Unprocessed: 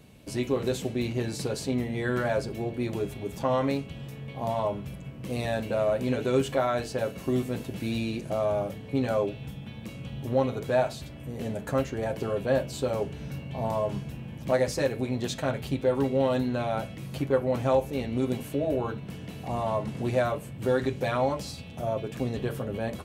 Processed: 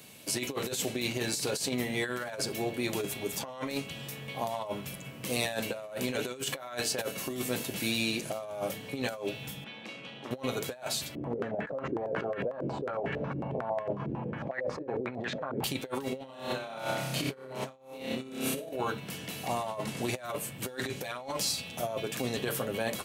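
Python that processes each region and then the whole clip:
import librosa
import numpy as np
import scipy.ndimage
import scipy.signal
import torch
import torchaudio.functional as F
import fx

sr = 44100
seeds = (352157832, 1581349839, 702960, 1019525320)

y = fx.chain(x, sr, fx.bandpass_edges(low_hz=260.0, high_hz=3500.0),
    fx.transformer_sat(knee_hz=720.0), at=(9.64, 10.31))
y = fx.chain(y, sr, fx.over_compress(threshold_db=-36.0, ratio=-1.0),
    fx.filter_held_lowpass(hz=11.0, low_hz=350.0, high_hz=1800.0), at=(11.15, 15.64))
y = fx.chain(y, sr, fx.high_shelf(hz=11000.0, db=-11.5),
    fx.room_flutter(wall_m=5.2, rt60_s=0.92), at=(16.18, 18.73))
y = scipy.signal.sosfilt(scipy.signal.butter(2, 88.0, 'highpass', fs=sr, output='sos'), y)
y = fx.tilt_eq(y, sr, slope=3.0)
y = fx.over_compress(y, sr, threshold_db=-33.0, ratio=-0.5)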